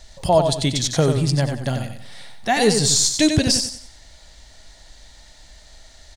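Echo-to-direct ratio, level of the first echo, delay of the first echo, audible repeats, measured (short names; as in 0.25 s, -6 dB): -6.0 dB, -6.5 dB, 92 ms, 3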